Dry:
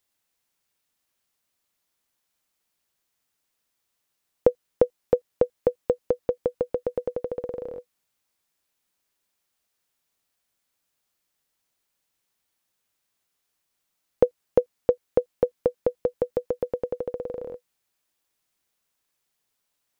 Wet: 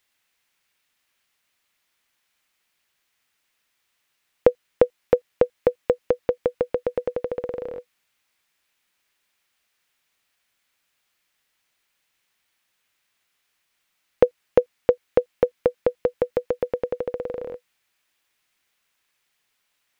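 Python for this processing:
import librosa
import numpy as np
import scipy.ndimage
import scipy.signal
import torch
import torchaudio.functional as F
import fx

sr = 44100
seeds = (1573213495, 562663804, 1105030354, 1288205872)

y = fx.peak_eq(x, sr, hz=2200.0, db=10.0, octaves=1.9)
y = F.gain(torch.from_numpy(y), 1.5).numpy()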